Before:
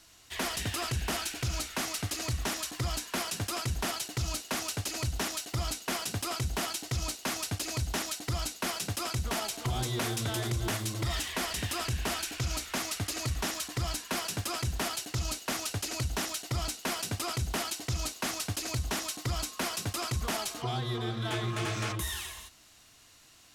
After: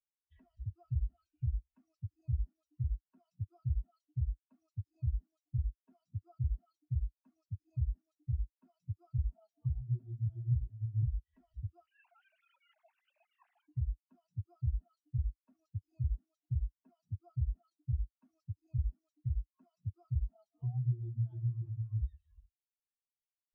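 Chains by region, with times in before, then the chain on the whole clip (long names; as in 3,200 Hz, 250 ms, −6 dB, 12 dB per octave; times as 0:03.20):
0:11.86–0:13.67: three sine waves on the formant tracks + downward compressor, threshold −31 dBFS + every bin compressed towards the loudest bin 2 to 1
whole clip: low-shelf EQ 86 Hz +10.5 dB; downward compressor 16 to 1, threshold −39 dBFS; every bin expanded away from the loudest bin 4 to 1; level +5 dB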